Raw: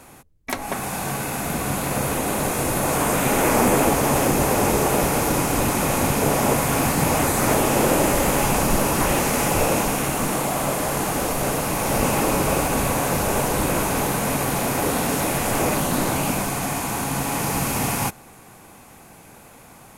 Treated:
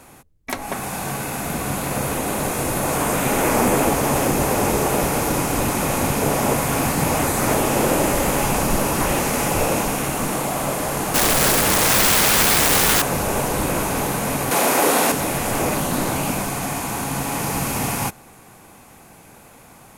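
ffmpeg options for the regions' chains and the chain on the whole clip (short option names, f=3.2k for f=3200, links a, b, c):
-filter_complex "[0:a]asettb=1/sr,asplit=3[a][b][c];[a]atrim=end=11.144[d];[b]atrim=start=11.14:end=13.02,asetpts=PTS-STARTPTS,afade=t=in:d=0.004:c=qsin,afade=t=out:st=1.876:d=0.004:c=qsin,acontrast=89,aeval=exprs='(mod(3.55*val(0)+1,2)-1)/3.55':c=same[e];[c]atrim=start=13.016[f];[d][e]acrossfade=d=0.004:c1=hsin:c2=qsin[g];[g][f]acrossfade=d=0.004:c1=qsin:c2=hsin,asettb=1/sr,asplit=3[h][i][j];[h]atrim=end=14.514[k];[i]atrim=start=14.51:end=15.12,asetpts=PTS-STARTPTS,afade=t=in:d=0.004:c=qsin,afade=t=out:st=0.606:d=0.004:c=qsin,highpass=320,acontrast=80[l];[j]atrim=start=15.116[m];[k][l]acrossfade=d=0.004:c1=hsin:c2=qsin[n];[n][m]acrossfade=d=0.004:c1=qsin:c2=hsin"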